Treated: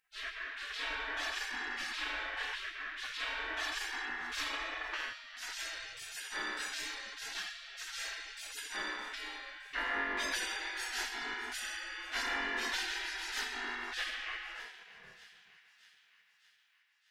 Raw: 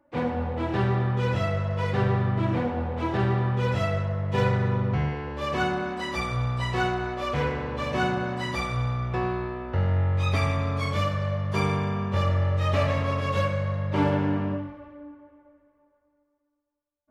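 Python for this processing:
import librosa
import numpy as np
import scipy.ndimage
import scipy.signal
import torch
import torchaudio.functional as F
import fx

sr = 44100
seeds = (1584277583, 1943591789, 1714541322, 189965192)

y = fx.spec_gate(x, sr, threshold_db=-30, keep='weak')
y = fx.peak_eq(y, sr, hz=1700.0, db=9.0, octaves=0.26)
y = fx.echo_wet_highpass(y, sr, ms=615, feedback_pct=57, hz=1700.0, wet_db=-16)
y = F.gain(torch.from_numpy(y), 6.5).numpy()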